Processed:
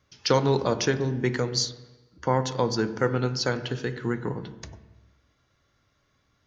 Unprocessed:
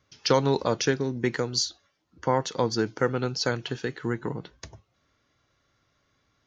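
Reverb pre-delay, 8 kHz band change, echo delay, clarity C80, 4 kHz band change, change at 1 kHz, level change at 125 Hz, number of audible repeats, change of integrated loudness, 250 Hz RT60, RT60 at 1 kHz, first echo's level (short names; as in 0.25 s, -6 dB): 15 ms, 0.0 dB, none, 14.5 dB, 0.0 dB, +0.5 dB, +3.0 dB, none, +0.5 dB, 1.1 s, 1.1 s, none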